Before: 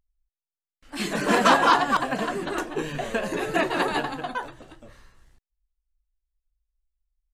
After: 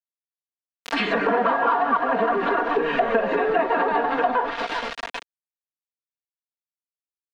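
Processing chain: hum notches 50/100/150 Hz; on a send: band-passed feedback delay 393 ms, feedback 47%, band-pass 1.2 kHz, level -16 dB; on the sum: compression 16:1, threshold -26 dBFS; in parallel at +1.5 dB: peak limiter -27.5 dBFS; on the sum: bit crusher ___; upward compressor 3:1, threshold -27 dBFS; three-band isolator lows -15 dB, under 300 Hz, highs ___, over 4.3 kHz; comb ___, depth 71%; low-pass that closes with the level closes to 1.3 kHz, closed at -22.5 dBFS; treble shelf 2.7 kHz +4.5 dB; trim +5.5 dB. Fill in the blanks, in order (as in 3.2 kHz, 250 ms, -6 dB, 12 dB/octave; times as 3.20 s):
6-bit, -18 dB, 4.3 ms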